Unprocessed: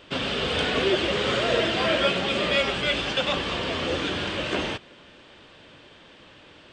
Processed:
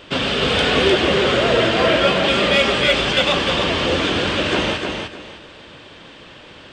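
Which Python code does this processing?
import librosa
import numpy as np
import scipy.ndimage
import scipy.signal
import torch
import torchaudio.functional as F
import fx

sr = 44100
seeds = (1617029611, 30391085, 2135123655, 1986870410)

p1 = fx.high_shelf(x, sr, hz=2600.0, db=-4.0, at=(0.94, 2.24))
p2 = 10.0 ** (-20.0 / 20.0) * np.tanh(p1 / 10.0 ** (-20.0 / 20.0))
p3 = p1 + (p2 * 10.0 ** (-4.0 / 20.0))
p4 = fx.echo_feedback(p3, sr, ms=303, feedback_pct=24, wet_db=-5.0)
y = p4 * 10.0 ** (3.5 / 20.0)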